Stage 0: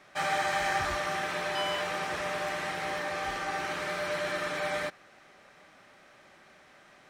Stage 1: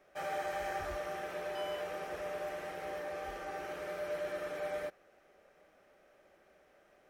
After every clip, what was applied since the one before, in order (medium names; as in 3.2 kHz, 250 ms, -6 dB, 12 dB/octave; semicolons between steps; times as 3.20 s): graphic EQ 125/250/500/1000/2000/4000/8000 Hz -12/-7/+4/-10/-7/-12/-10 dB; trim -1.5 dB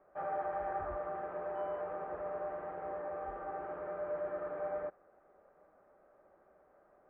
four-pole ladder low-pass 1.4 kHz, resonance 35%; trim +6 dB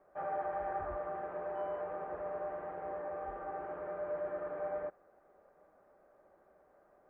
band-stop 1.3 kHz, Q 20